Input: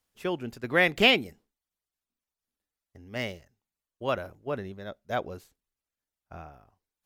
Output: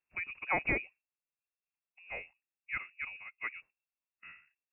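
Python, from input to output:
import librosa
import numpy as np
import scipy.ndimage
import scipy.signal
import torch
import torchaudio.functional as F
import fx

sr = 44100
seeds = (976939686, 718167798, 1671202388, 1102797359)

y = fx.freq_invert(x, sr, carrier_hz=2700)
y = fx.stretch_vocoder(y, sr, factor=0.67)
y = F.gain(torch.from_numpy(y), -8.0).numpy()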